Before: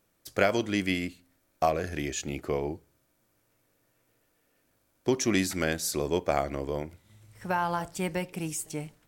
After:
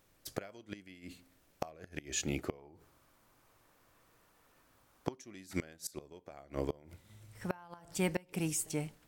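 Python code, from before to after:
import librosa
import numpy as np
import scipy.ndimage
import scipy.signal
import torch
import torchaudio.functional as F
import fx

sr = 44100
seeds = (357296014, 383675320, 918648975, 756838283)

y = fx.dmg_noise_colour(x, sr, seeds[0], colour='pink', level_db=-72.0)
y = fx.peak_eq(y, sr, hz=1100.0, db=8.5, octaves=0.95, at=(2.58, 5.14))
y = fx.gate_flip(y, sr, shuts_db=-19.0, range_db=-25)
y = y * 10.0 ** (-1.0 / 20.0)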